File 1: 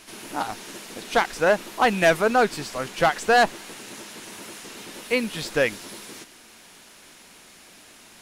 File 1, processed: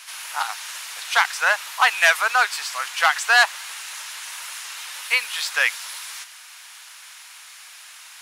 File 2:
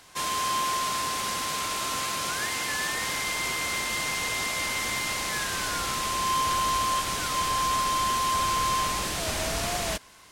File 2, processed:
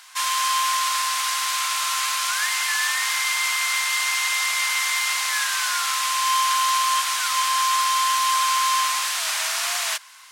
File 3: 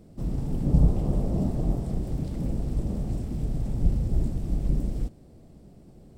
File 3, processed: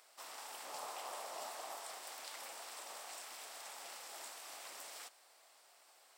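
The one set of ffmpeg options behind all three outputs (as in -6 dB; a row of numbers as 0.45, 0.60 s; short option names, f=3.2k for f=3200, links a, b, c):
-af "highpass=f=1k:w=0.5412,highpass=f=1k:w=1.3066,volume=7dB"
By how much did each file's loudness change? +1.5, +6.0, -19.0 LU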